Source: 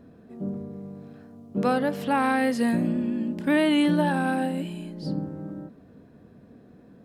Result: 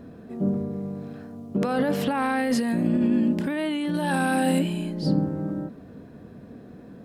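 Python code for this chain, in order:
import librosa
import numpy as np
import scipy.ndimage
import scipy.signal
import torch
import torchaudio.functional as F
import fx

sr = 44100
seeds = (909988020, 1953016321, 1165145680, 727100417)

y = fx.peak_eq(x, sr, hz=9500.0, db=9.5, octaves=2.8, at=(3.94, 4.59))
y = fx.over_compress(y, sr, threshold_db=-27.0, ratio=-1.0)
y = F.gain(torch.from_numpy(y), 4.0).numpy()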